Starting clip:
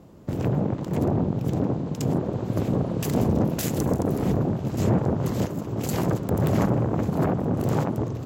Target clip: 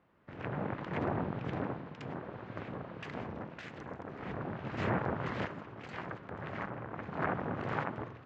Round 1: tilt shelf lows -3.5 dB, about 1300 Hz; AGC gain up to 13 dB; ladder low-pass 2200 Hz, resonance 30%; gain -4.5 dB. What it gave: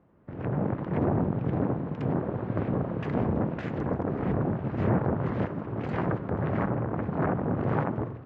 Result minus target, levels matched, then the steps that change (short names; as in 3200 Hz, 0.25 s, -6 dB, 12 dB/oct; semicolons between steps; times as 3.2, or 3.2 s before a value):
1000 Hz band -4.5 dB
change: tilt shelf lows -14 dB, about 1300 Hz